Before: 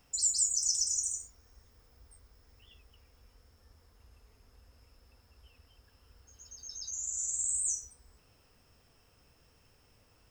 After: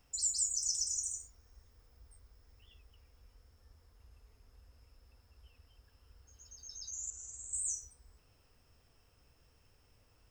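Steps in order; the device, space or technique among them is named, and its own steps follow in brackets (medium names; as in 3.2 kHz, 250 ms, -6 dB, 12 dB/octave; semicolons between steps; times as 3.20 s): 7.10–7.53 s: low-pass 4.5 kHz 12 dB/octave; low shelf boost with a cut just above (bass shelf 100 Hz +6 dB; peaking EQ 190 Hz -3 dB 0.64 oct); trim -4.5 dB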